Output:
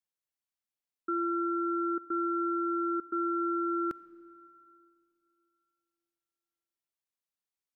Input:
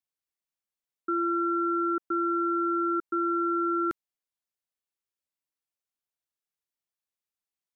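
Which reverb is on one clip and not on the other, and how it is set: algorithmic reverb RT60 2.7 s, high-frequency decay 0.8×, pre-delay 5 ms, DRR 17 dB; trim -3.5 dB

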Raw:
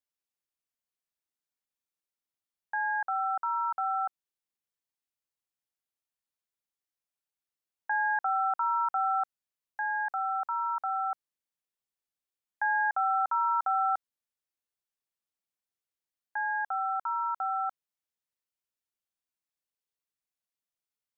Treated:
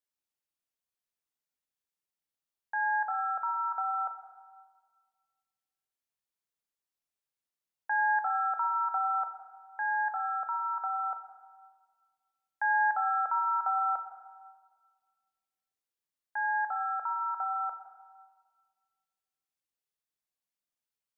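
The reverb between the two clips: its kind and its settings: plate-style reverb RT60 1.6 s, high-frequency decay 0.8×, DRR 6 dB; trim -2 dB

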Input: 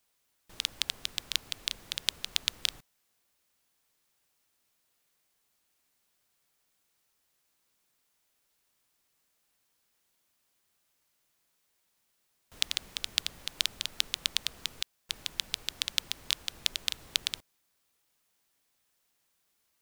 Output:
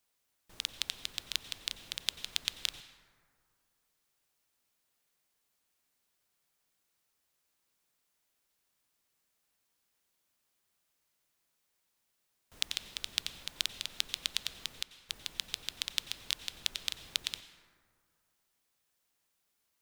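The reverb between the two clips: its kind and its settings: plate-style reverb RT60 2.2 s, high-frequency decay 0.35×, pre-delay 80 ms, DRR 11.5 dB; trim -4 dB

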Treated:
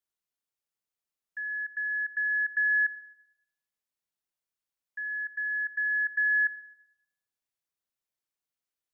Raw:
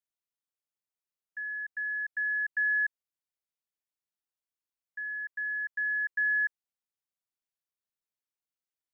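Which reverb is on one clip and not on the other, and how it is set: algorithmic reverb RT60 1 s, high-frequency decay 0.45×, pre-delay 15 ms, DRR 15 dB; trim +1.5 dB

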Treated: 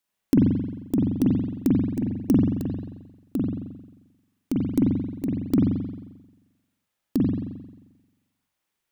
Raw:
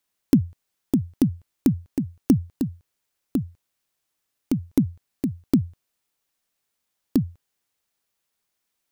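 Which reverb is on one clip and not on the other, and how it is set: spring tank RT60 1.1 s, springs 44 ms, chirp 80 ms, DRR -3.5 dB; trim -4 dB

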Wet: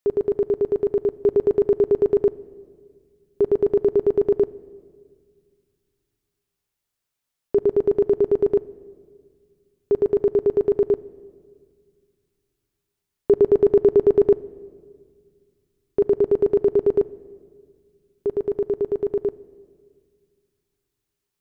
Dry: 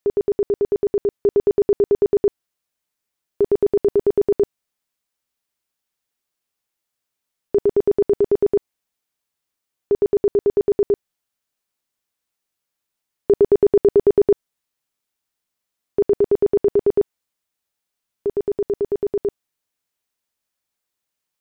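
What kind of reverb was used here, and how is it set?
simulated room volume 3000 m³, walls mixed, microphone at 0.32 m; trim -1.5 dB

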